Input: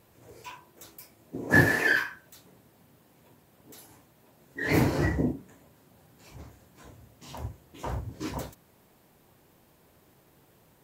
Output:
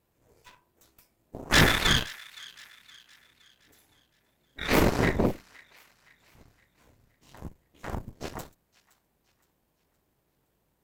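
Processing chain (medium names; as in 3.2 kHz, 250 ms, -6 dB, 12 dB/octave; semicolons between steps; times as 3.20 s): octave divider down 2 oct, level -3 dB; Chebyshev shaper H 6 -7 dB, 7 -19 dB, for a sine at -6.5 dBFS; hard clipper -13 dBFS, distortion -9 dB; feedback echo behind a high-pass 517 ms, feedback 43%, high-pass 1.6 kHz, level -19.5 dB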